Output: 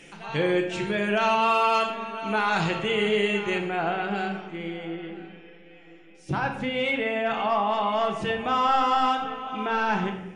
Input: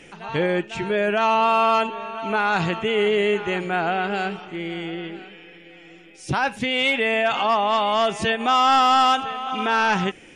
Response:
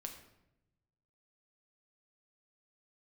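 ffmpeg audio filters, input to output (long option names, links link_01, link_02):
-filter_complex "[0:a]asetnsamples=nb_out_samples=441:pad=0,asendcmd='3.58 highshelf g -4;4.7 highshelf g -11.5',highshelf=frequency=3100:gain=5.5[link_01];[1:a]atrim=start_sample=2205[link_02];[link_01][link_02]afir=irnorm=-1:irlink=0"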